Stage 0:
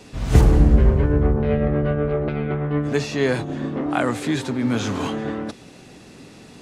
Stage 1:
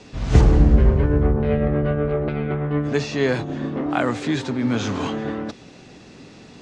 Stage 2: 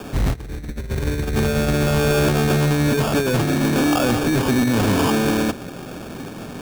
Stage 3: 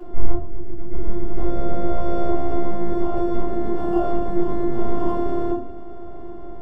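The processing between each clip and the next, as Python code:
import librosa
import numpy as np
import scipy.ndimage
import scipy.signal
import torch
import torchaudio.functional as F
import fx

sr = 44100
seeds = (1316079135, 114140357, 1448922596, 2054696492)

y1 = scipy.signal.sosfilt(scipy.signal.butter(4, 7000.0, 'lowpass', fs=sr, output='sos'), x)
y2 = fx.over_compress(y1, sr, threshold_db=-22.0, ratio=-0.5)
y2 = fx.sample_hold(y2, sr, seeds[0], rate_hz=2000.0, jitter_pct=0)
y2 = 10.0 ** (-21.0 / 20.0) * np.tanh(y2 / 10.0 ** (-21.0 / 20.0))
y2 = y2 * librosa.db_to_amplitude(7.5)
y3 = fx.robotise(y2, sr, hz=347.0)
y3 = scipy.signal.savgol_filter(y3, 65, 4, mode='constant')
y3 = fx.room_shoebox(y3, sr, seeds[1], volume_m3=45.0, walls='mixed', distance_m=1.4)
y3 = y3 * librosa.db_to_amplitude(-7.5)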